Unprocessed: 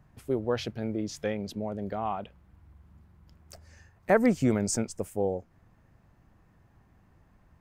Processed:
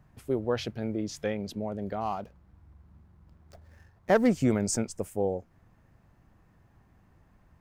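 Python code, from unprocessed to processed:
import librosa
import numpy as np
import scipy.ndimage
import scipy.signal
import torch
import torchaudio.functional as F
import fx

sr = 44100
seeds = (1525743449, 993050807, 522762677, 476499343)

y = fx.median_filter(x, sr, points=15, at=(2.0, 4.3), fade=0.02)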